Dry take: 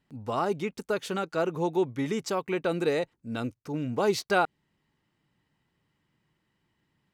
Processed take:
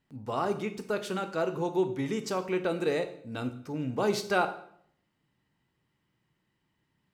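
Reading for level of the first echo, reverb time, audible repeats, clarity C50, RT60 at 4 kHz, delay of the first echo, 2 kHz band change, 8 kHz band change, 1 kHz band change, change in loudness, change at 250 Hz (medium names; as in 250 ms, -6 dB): no echo, 0.60 s, no echo, 12.0 dB, 0.55 s, no echo, -2.0 dB, -2.0 dB, -2.0 dB, -1.5 dB, -1.5 dB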